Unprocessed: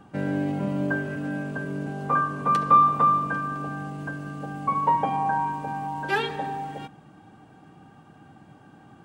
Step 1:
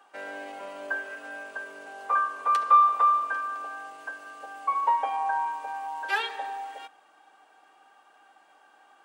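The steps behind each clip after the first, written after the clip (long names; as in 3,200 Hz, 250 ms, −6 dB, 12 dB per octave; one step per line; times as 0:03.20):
Bessel high-pass filter 790 Hz, order 4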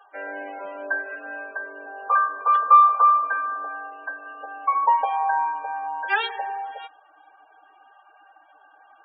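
spectral peaks only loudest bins 32
level +5 dB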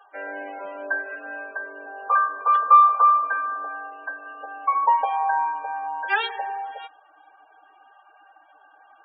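no processing that can be heard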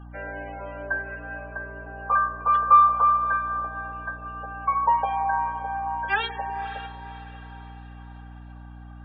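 feedback delay with all-pass diffusion 541 ms, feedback 47%, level −13 dB
mains hum 60 Hz, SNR 16 dB
level −2 dB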